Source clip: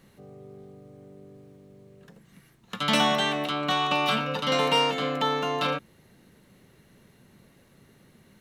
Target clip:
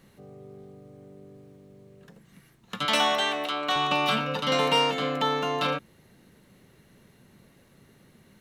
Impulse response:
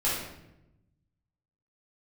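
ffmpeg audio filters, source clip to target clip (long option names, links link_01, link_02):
-filter_complex "[0:a]asettb=1/sr,asplit=3[link_01][link_02][link_03];[link_01]atrim=end=2.854[link_04];[link_02]atrim=start=2.85:end=3.76,asetpts=PTS-STARTPTS,afade=type=in:duration=0.004:curve=qsin,afade=type=out:start_time=0.906:duration=0.004:curve=qsin,highpass=370[link_05];[link_03]atrim=start=3.756[link_06];[link_04][link_05]acrossfade=duration=0.004:curve1=hsin:curve2=qsin[link_07];[link_07][link_06]acrossfade=duration=0.004:curve1=qsin:curve2=hsin"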